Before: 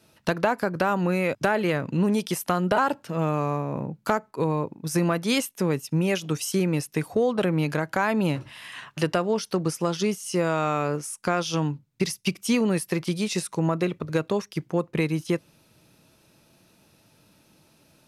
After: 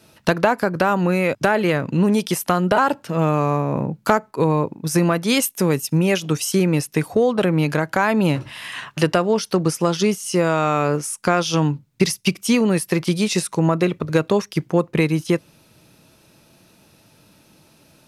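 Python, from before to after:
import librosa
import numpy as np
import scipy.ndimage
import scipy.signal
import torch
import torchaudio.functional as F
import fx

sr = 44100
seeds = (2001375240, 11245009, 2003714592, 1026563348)

p1 = fx.high_shelf(x, sr, hz=6400.0, db=9.0, at=(5.42, 5.98))
p2 = fx.rider(p1, sr, range_db=4, speed_s=0.5)
p3 = p1 + (p2 * librosa.db_to_amplitude(2.0))
y = p3 * librosa.db_to_amplitude(-1.0)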